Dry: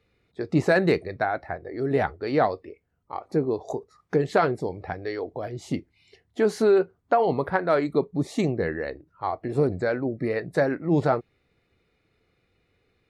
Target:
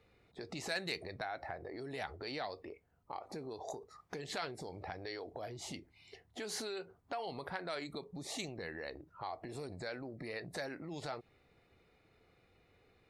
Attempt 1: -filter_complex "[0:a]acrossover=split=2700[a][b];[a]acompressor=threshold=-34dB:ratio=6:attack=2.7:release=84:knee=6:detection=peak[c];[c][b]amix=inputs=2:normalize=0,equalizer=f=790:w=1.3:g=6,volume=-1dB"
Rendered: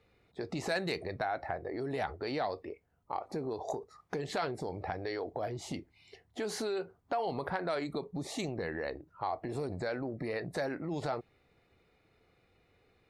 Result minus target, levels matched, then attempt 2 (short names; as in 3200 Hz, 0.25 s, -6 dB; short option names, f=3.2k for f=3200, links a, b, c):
compressor: peak gain reduction -8.5 dB
-filter_complex "[0:a]acrossover=split=2700[a][b];[a]acompressor=threshold=-44dB:ratio=6:attack=2.7:release=84:knee=6:detection=peak[c];[c][b]amix=inputs=2:normalize=0,equalizer=f=790:w=1.3:g=6,volume=-1dB"